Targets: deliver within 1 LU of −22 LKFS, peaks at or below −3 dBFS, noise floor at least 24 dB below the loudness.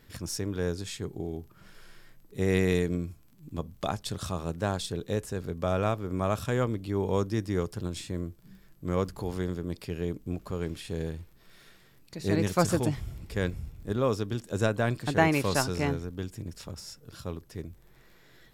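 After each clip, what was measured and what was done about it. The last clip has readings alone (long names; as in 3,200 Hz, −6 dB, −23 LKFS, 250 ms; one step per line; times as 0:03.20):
crackle rate 23 per second; integrated loudness −31.0 LKFS; sample peak −9.0 dBFS; target loudness −22.0 LKFS
→ click removal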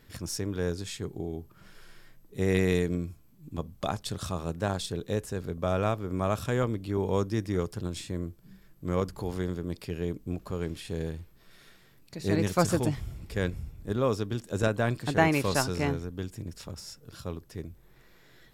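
crackle rate 0.32 per second; integrated loudness −31.0 LKFS; sample peak −9.0 dBFS; target loudness −22.0 LKFS
→ level +9 dB
brickwall limiter −3 dBFS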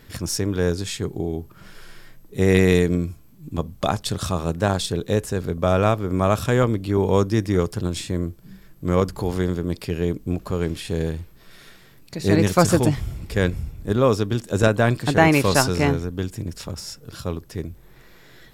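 integrated loudness −22.0 LKFS; sample peak −3.0 dBFS; background noise floor −49 dBFS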